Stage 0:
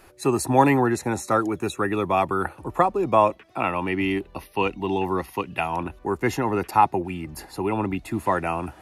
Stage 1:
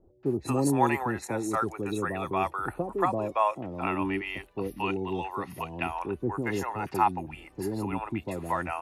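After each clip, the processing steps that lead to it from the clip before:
three-band delay without the direct sound lows, mids, highs 230/260 ms, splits 570/4,600 Hz
level −5 dB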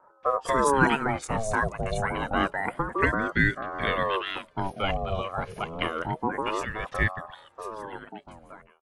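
fade-out on the ending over 2.80 s
downsampling to 22,050 Hz
ring modulator whose carrier an LFO sweeps 600 Hz, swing 55%, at 0.28 Hz
level +5.5 dB

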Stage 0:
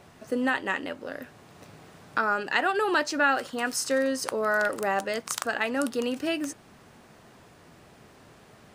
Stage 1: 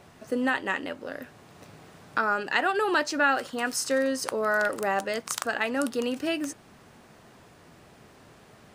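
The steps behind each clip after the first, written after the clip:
no processing that can be heard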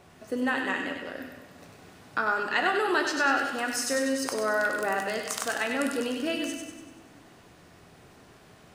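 delay with a high-pass on its return 97 ms, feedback 51%, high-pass 1,600 Hz, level −3.5 dB
on a send at −4.5 dB: convolution reverb RT60 1.2 s, pre-delay 3 ms
on the sum: level −2.5 dB

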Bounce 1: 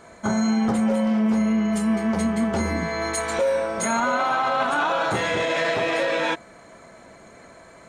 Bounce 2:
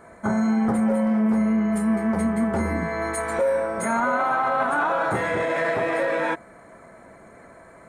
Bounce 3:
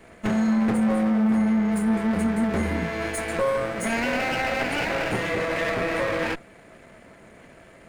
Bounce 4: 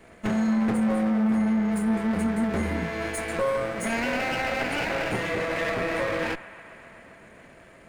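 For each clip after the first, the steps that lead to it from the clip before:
flat-topped bell 4,300 Hz −12 dB
lower of the sound and its delayed copy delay 0.44 ms
delay with a band-pass on its return 133 ms, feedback 81%, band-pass 1,400 Hz, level −17 dB; level −2 dB

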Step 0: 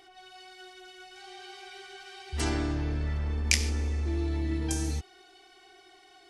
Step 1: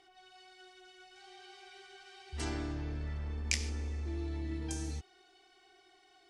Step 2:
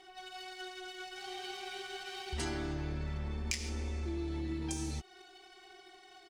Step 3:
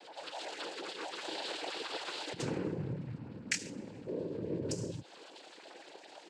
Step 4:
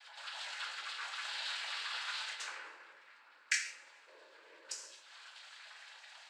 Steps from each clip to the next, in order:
low-pass filter 10,000 Hz 24 dB per octave; level −8 dB
comb filter 5.4 ms, depth 53%; leveller curve on the samples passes 1; downward compressor 4 to 1, threshold −42 dBFS, peak gain reduction 15 dB; level +6.5 dB
spectral envelope exaggerated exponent 1.5; cochlear-implant simulation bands 8; level +3.5 dB
four-pole ladder high-pass 1,100 Hz, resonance 35%; rectangular room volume 95 cubic metres, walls mixed, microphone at 0.75 metres; level +5.5 dB

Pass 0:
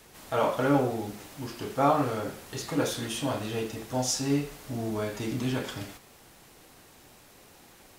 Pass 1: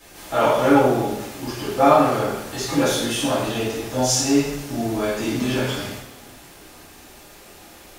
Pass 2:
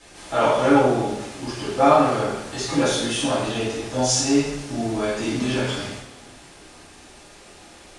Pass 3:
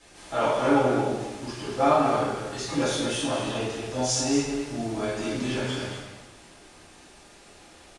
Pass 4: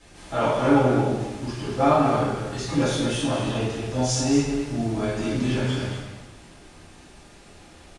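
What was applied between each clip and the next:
coupled-rooms reverb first 0.57 s, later 2 s, DRR −9.5 dB
Chebyshev low-pass filter 9,600 Hz, order 4
slap from a distant wall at 38 metres, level −6 dB; level −5.5 dB
bass and treble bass +8 dB, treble −2 dB; level +1 dB

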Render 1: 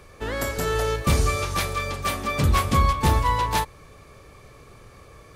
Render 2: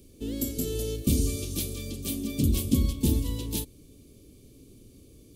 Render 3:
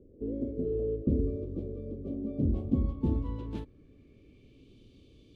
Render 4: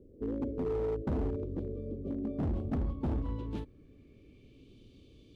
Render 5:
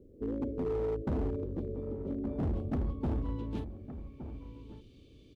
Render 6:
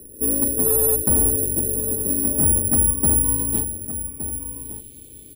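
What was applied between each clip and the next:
drawn EQ curve 160 Hz 0 dB, 270 Hz +12 dB, 1,000 Hz −27 dB, 1,800 Hz −24 dB, 3,000 Hz −2 dB, 5,100 Hz −1 dB, 15,000 Hz +10 dB; level −5 dB
low-pass filter sweep 510 Hz → 3,300 Hz, 0:02.03–0:04.80; level −4.5 dB
hard clipping −28.5 dBFS, distortion −9 dB
slap from a distant wall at 200 metres, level −11 dB
bad sample-rate conversion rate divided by 4×, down filtered, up zero stuff; level +8 dB

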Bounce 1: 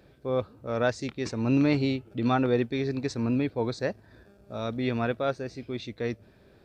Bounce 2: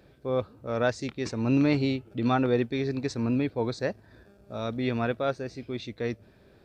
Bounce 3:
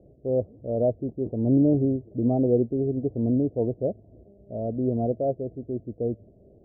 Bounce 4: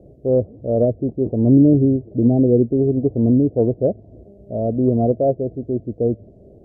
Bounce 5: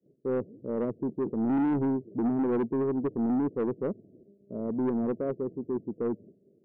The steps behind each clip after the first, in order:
no processing that can be heard
Chebyshev low-pass filter 680 Hz, order 5; level +4 dB
treble cut that deepens with the level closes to 460 Hz, closed at −18.5 dBFS; level +8.5 dB
downward expander −37 dBFS; Chebyshev band-pass filter 170–420 Hz, order 2; soft clipping −17.5 dBFS, distortion −10 dB; level −5.5 dB

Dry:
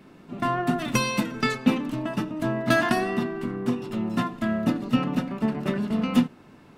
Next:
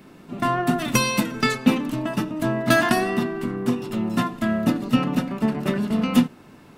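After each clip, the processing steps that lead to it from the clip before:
high-shelf EQ 7,300 Hz +8 dB
level +3 dB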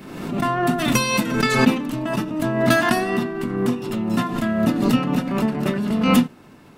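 background raised ahead of every attack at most 48 dB per second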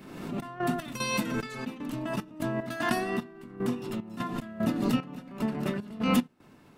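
gate pattern "xx.x.xx.." 75 BPM −12 dB
level −8.5 dB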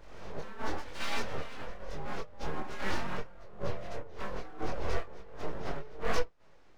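partials spread apart or drawn together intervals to 79%
full-wave rectification
multi-voice chorus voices 4, 0.33 Hz, delay 23 ms, depth 3.4 ms
level +1.5 dB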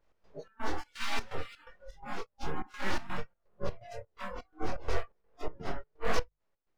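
mains-hum notches 50/100/150 Hz
noise reduction from a noise print of the clip's start 22 dB
gate pattern "x.xx.xx.x" 126 BPM −12 dB
level +1 dB

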